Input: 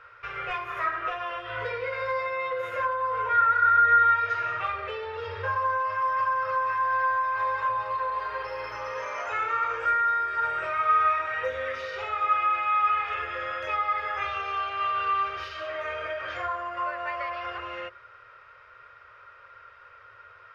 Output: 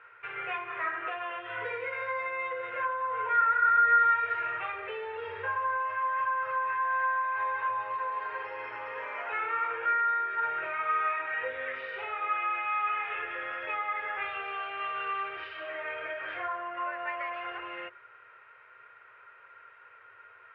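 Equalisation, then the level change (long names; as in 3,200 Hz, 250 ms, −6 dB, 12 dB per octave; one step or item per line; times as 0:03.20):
loudspeaker in its box 210–2,800 Hz, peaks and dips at 230 Hz −3 dB, 560 Hz −9 dB, 1,200 Hz −8 dB
0.0 dB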